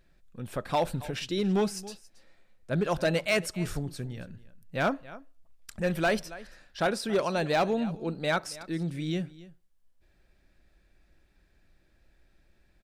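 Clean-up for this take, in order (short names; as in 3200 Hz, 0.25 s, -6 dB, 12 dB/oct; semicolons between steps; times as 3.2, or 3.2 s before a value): clip repair -19.5 dBFS; inverse comb 0.276 s -19 dB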